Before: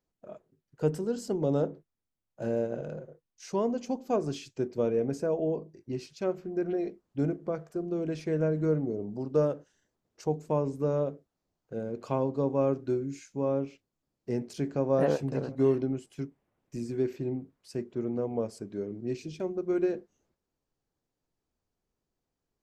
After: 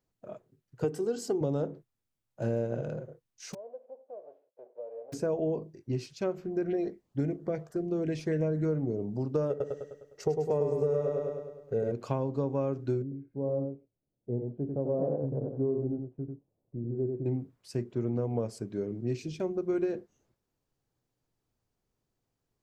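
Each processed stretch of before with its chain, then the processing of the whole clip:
0:00.84–0:01.41: high-pass filter 140 Hz + comb filter 2.6 ms, depth 56%
0:03.53–0:05.12: spectral envelope flattened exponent 0.3 + downward compressor 2.5 to 1, threshold −32 dBFS + flat-topped band-pass 550 Hz, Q 3.9
0:06.65–0:08.65: parametric band 1,900 Hz +8.5 dB 0.51 octaves + auto-filter notch saw up 3.6 Hz 910–2,800 Hz
0:09.50–0:11.92: comb filter 1.5 ms, depth 32% + hollow resonant body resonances 420/1,900 Hz, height 18 dB, ringing for 95 ms + repeating echo 102 ms, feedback 53%, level −3 dB
0:13.02–0:17.26: transistor ladder low-pass 800 Hz, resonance 25% + single-tap delay 94 ms −4.5 dB
whole clip: parametric band 120 Hz +9.5 dB 0.3 octaves; downward compressor, threshold −27 dBFS; level +1.5 dB

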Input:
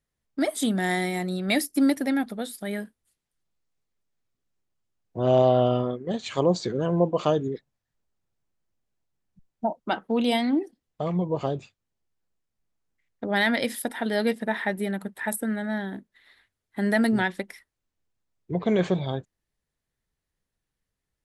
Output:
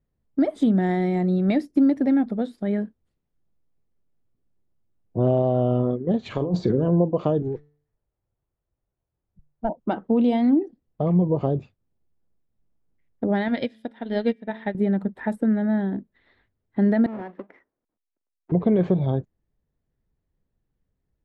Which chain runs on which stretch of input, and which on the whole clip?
0:06.25–0:06.88: compressor whose output falls as the input rises −28 dBFS + double-tracking delay 45 ms −12.5 dB
0:07.42–0:09.69: parametric band 220 Hz −12 dB 1.1 octaves + hum removal 147.4 Hz, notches 30 + windowed peak hold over 9 samples
0:13.48–0:14.75: parametric band 3,400 Hz +10 dB 1.4 octaves + hum removal 110.7 Hz, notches 34 + expander for the loud parts 2.5 to 1, over −32 dBFS
0:17.06–0:18.52: each half-wave held at its own peak + three-way crossover with the lows and the highs turned down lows −23 dB, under 240 Hz, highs −23 dB, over 2,500 Hz + downward compressor 2 to 1, threshold −47 dBFS
whole clip: low-pass filter 4,400 Hz 12 dB per octave; downward compressor 4 to 1, threshold −23 dBFS; tilt shelving filter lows +9.5 dB

